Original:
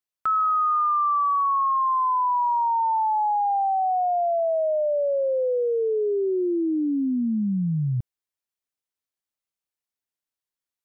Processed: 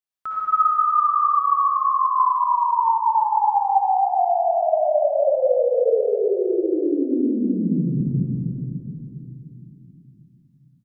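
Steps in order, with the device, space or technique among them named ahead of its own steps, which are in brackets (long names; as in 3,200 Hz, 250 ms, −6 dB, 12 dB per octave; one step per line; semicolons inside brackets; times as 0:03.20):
0:05.28–0:05.69: low-shelf EQ 360 Hz +7.5 dB
cave (single-tap delay 270 ms −9 dB; convolution reverb RT60 3.4 s, pre-delay 51 ms, DRR −7.5 dB)
level −6 dB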